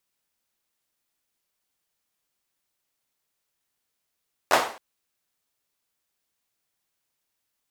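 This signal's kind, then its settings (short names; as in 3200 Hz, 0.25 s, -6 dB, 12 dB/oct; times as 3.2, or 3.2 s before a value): hand clap length 0.27 s, bursts 3, apart 11 ms, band 770 Hz, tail 0.45 s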